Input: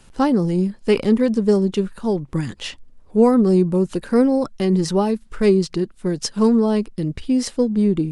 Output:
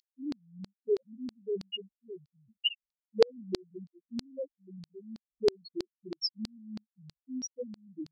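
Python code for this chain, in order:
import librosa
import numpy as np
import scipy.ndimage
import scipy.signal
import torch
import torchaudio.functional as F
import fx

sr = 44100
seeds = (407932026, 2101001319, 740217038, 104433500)

y = fx.spec_topn(x, sr, count=1)
y = fx.filter_lfo_highpass(y, sr, shape='saw_down', hz=3.1, low_hz=770.0, high_hz=4500.0, q=5.6)
y = F.gain(torch.from_numpy(y), 8.5).numpy()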